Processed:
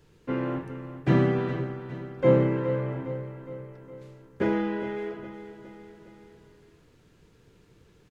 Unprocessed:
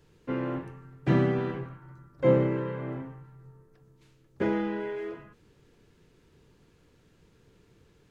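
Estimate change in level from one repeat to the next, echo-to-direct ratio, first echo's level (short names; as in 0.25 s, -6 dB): -5.0 dB, -10.5 dB, -12.0 dB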